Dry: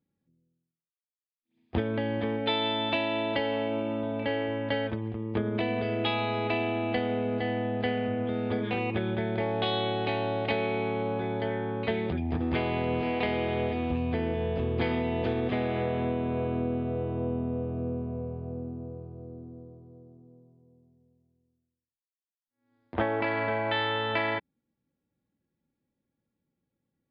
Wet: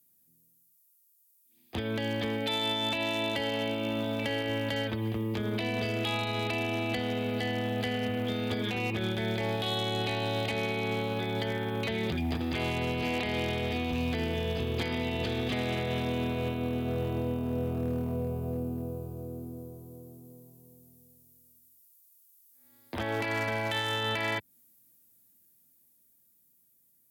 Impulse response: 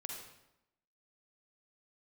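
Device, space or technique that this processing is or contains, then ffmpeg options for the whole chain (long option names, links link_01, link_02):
FM broadcast chain: -filter_complex "[0:a]highpass=48,dynaudnorm=framelen=510:gausssize=11:maxgain=5dB,acrossover=split=86|220|2300[link_01][link_02][link_03][link_04];[link_01]acompressor=threshold=-36dB:ratio=4[link_05];[link_02]acompressor=threshold=-31dB:ratio=4[link_06];[link_03]acompressor=threshold=-30dB:ratio=4[link_07];[link_04]acompressor=threshold=-45dB:ratio=4[link_08];[link_05][link_06][link_07][link_08]amix=inputs=4:normalize=0,aemphasis=mode=production:type=75fm,alimiter=limit=-22dB:level=0:latency=1:release=69,asoftclip=type=hard:threshold=-24.5dB,lowpass=frequency=15000:width=0.5412,lowpass=frequency=15000:width=1.3066,aemphasis=mode=production:type=75fm"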